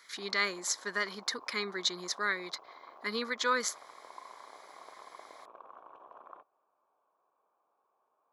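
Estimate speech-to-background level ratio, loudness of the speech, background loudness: 20.0 dB, -33.0 LUFS, -53.0 LUFS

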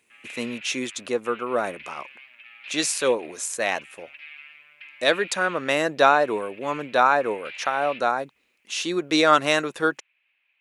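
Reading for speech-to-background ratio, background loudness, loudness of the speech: 18.0 dB, -41.5 LUFS, -23.5 LUFS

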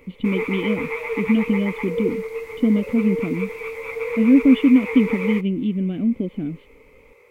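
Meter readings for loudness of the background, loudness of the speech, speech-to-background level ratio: -28.0 LUFS, -20.5 LUFS, 7.5 dB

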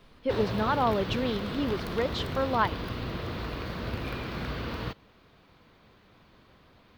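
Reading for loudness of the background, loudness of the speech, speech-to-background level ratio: -35.0 LUFS, -29.5 LUFS, 5.5 dB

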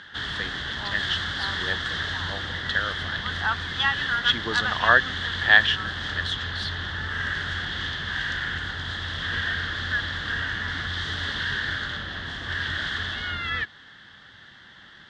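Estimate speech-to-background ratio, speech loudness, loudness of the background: 3.0 dB, -25.0 LUFS, -28.0 LUFS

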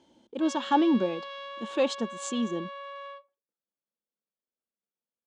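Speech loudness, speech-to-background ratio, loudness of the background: -28.5 LUFS, 12.0 dB, -40.5 LUFS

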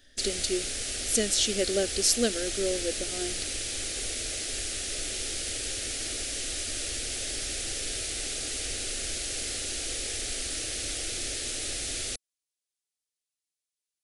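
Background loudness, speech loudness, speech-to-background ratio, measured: -31.0 LUFS, -28.5 LUFS, 2.5 dB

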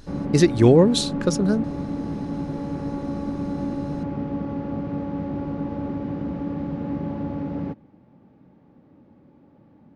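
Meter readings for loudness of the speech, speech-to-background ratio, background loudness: -19.0 LUFS, 10.0 dB, -29.0 LUFS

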